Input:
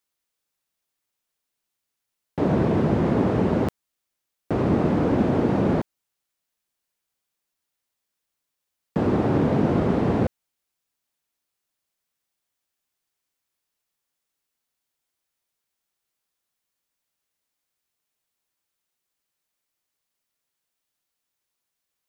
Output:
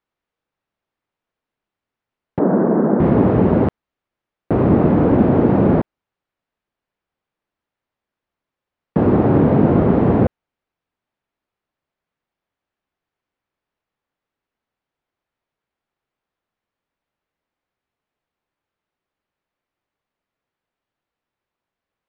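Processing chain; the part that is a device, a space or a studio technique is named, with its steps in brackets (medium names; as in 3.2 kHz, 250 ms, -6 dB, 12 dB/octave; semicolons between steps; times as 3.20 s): 2.39–3.00 s: elliptic band-pass 190–1600 Hz, stop band 40 dB; phone in a pocket (low-pass 3.3 kHz 12 dB/octave; treble shelf 2.3 kHz -12 dB); trim +7.5 dB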